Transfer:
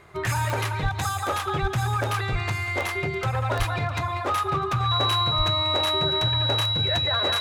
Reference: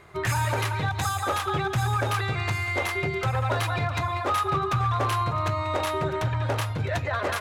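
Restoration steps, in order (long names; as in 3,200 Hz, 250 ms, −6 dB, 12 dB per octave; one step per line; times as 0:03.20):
click removal
notch filter 3,900 Hz, Q 30
high-pass at the plosives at 0:00.82/0:01.61/0:02.31/0:03.58/0:05.37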